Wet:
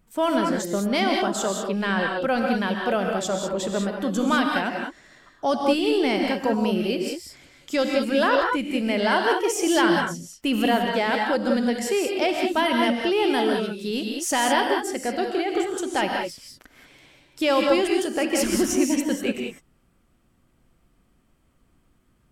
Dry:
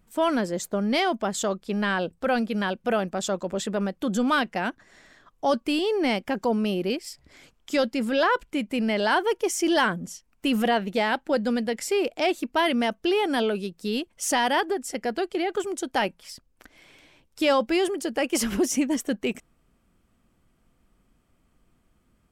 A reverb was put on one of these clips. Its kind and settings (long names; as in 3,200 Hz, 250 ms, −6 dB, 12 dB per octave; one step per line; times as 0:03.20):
reverb whose tail is shaped and stops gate 220 ms rising, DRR 1.5 dB